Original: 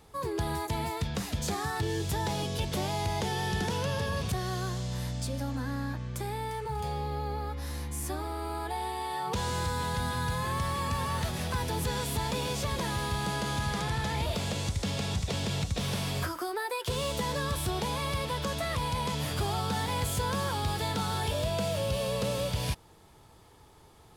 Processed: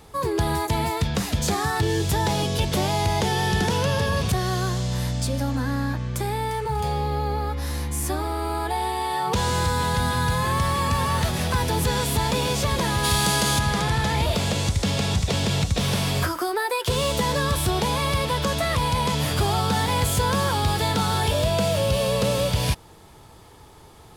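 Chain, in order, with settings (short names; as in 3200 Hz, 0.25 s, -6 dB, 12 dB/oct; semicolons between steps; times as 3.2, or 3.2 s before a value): 13.03–13.58 high shelf 2800 Hz -> 4400 Hz +11 dB; gain +8.5 dB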